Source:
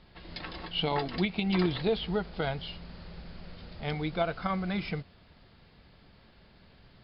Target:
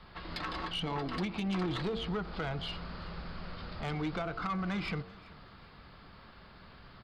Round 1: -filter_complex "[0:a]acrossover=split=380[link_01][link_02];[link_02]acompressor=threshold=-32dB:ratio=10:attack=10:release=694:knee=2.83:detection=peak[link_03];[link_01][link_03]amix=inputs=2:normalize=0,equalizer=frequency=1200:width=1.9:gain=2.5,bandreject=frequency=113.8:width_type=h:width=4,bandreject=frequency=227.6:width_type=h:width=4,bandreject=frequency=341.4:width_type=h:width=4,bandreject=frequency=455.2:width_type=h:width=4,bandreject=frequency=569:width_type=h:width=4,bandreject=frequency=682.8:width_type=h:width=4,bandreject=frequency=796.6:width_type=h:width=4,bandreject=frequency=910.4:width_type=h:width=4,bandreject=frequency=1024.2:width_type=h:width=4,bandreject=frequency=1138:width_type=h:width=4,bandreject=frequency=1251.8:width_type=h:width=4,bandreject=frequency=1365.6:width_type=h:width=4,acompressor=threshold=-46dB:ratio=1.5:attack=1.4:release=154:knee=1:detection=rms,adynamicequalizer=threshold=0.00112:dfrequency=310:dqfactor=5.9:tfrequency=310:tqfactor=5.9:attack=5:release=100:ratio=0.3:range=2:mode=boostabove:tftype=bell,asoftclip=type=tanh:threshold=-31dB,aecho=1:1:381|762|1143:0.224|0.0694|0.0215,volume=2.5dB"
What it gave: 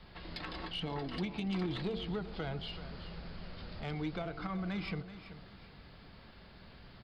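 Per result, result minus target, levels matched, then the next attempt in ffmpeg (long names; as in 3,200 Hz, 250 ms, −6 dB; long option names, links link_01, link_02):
echo-to-direct +9 dB; 1,000 Hz band −3.5 dB; downward compressor: peak gain reduction +3 dB
-filter_complex "[0:a]acrossover=split=380[link_01][link_02];[link_02]acompressor=threshold=-32dB:ratio=10:attack=10:release=694:knee=2.83:detection=peak[link_03];[link_01][link_03]amix=inputs=2:normalize=0,equalizer=frequency=1200:width=1.9:gain=2.5,bandreject=frequency=113.8:width_type=h:width=4,bandreject=frequency=227.6:width_type=h:width=4,bandreject=frequency=341.4:width_type=h:width=4,bandreject=frequency=455.2:width_type=h:width=4,bandreject=frequency=569:width_type=h:width=4,bandreject=frequency=682.8:width_type=h:width=4,bandreject=frequency=796.6:width_type=h:width=4,bandreject=frequency=910.4:width_type=h:width=4,bandreject=frequency=1024.2:width_type=h:width=4,bandreject=frequency=1138:width_type=h:width=4,bandreject=frequency=1251.8:width_type=h:width=4,bandreject=frequency=1365.6:width_type=h:width=4,acompressor=threshold=-46dB:ratio=1.5:attack=1.4:release=154:knee=1:detection=rms,adynamicequalizer=threshold=0.00112:dfrequency=310:dqfactor=5.9:tfrequency=310:tqfactor=5.9:attack=5:release=100:ratio=0.3:range=2:mode=boostabove:tftype=bell,asoftclip=type=tanh:threshold=-31dB,aecho=1:1:381|762:0.0794|0.0246,volume=2.5dB"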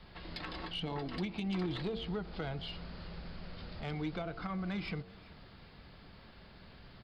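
1,000 Hz band −3.5 dB; downward compressor: peak gain reduction +3 dB
-filter_complex "[0:a]acrossover=split=380[link_01][link_02];[link_02]acompressor=threshold=-32dB:ratio=10:attack=10:release=694:knee=2.83:detection=peak[link_03];[link_01][link_03]amix=inputs=2:normalize=0,equalizer=frequency=1200:width=1.9:gain=10.5,bandreject=frequency=113.8:width_type=h:width=4,bandreject=frequency=227.6:width_type=h:width=4,bandreject=frequency=341.4:width_type=h:width=4,bandreject=frequency=455.2:width_type=h:width=4,bandreject=frequency=569:width_type=h:width=4,bandreject=frequency=682.8:width_type=h:width=4,bandreject=frequency=796.6:width_type=h:width=4,bandreject=frequency=910.4:width_type=h:width=4,bandreject=frequency=1024.2:width_type=h:width=4,bandreject=frequency=1138:width_type=h:width=4,bandreject=frequency=1251.8:width_type=h:width=4,bandreject=frequency=1365.6:width_type=h:width=4,acompressor=threshold=-46dB:ratio=1.5:attack=1.4:release=154:knee=1:detection=rms,adynamicequalizer=threshold=0.00112:dfrequency=310:dqfactor=5.9:tfrequency=310:tqfactor=5.9:attack=5:release=100:ratio=0.3:range=2:mode=boostabove:tftype=bell,asoftclip=type=tanh:threshold=-31dB,aecho=1:1:381|762:0.0794|0.0246,volume=2.5dB"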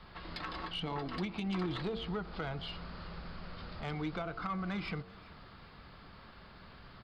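downward compressor: peak gain reduction +4 dB
-filter_complex "[0:a]acrossover=split=380[link_01][link_02];[link_02]acompressor=threshold=-32dB:ratio=10:attack=10:release=694:knee=2.83:detection=peak[link_03];[link_01][link_03]amix=inputs=2:normalize=0,equalizer=frequency=1200:width=1.9:gain=10.5,bandreject=frequency=113.8:width_type=h:width=4,bandreject=frequency=227.6:width_type=h:width=4,bandreject=frequency=341.4:width_type=h:width=4,bandreject=frequency=455.2:width_type=h:width=4,bandreject=frequency=569:width_type=h:width=4,bandreject=frequency=682.8:width_type=h:width=4,bandreject=frequency=796.6:width_type=h:width=4,bandreject=frequency=910.4:width_type=h:width=4,bandreject=frequency=1024.2:width_type=h:width=4,bandreject=frequency=1138:width_type=h:width=4,bandreject=frequency=1251.8:width_type=h:width=4,bandreject=frequency=1365.6:width_type=h:width=4,acompressor=threshold=-34dB:ratio=1.5:attack=1.4:release=154:knee=1:detection=rms,adynamicequalizer=threshold=0.00112:dfrequency=310:dqfactor=5.9:tfrequency=310:tqfactor=5.9:attack=5:release=100:ratio=0.3:range=2:mode=boostabove:tftype=bell,asoftclip=type=tanh:threshold=-31dB,aecho=1:1:381|762:0.0794|0.0246,volume=2.5dB"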